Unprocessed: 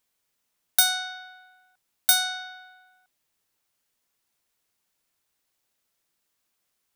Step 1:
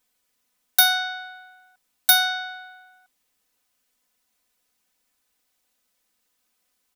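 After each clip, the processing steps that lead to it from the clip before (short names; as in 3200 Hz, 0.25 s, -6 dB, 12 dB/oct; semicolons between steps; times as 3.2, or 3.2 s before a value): comb 4 ms, depth 97%; gain +1 dB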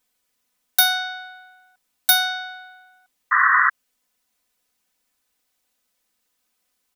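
painted sound noise, 3.31–3.7, 1000–2000 Hz -16 dBFS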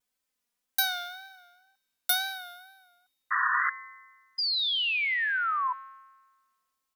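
wow and flutter 79 cents; painted sound fall, 4.38–5.73, 980–5000 Hz -18 dBFS; resonator 120 Hz, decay 1.4 s, harmonics odd, mix 70%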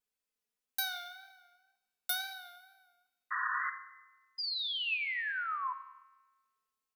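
small resonant body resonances 420/2600 Hz, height 8 dB; on a send at -9 dB: reverb RT60 1.0 s, pre-delay 5 ms; on the sum: gain -8.5 dB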